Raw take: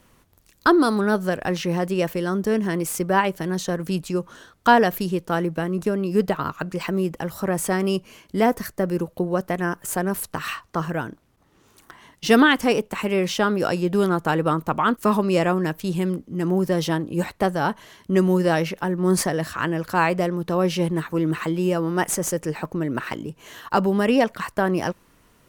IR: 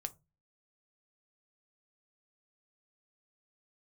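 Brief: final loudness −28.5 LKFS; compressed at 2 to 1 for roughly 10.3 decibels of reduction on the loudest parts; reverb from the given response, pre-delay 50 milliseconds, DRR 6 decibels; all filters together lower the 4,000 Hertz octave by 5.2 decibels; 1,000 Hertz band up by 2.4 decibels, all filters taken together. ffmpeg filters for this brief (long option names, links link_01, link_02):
-filter_complex "[0:a]equalizer=frequency=1000:width_type=o:gain=3.5,equalizer=frequency=4000:width_type=o:gain=-8,acompressor=threshold=-27dB:ratio=2,asplit=2[link_01][link_02];[1:a]atrim=start_sample=2205,adelay=50[link_03];[link_02][link_03]afir=irnorm=-1:irlink=0,volume=-4dB[link_04];[link_01][link_04]amix=inputs=2:normalize=0,volume=-1.5dB"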